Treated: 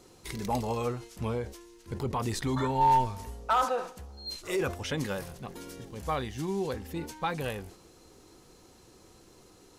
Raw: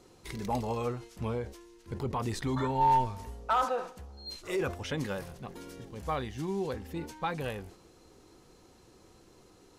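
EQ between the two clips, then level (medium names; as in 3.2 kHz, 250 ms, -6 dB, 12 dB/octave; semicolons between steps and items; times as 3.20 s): treble shelf 4.9 kHz +5.5 dB; +1.5 dB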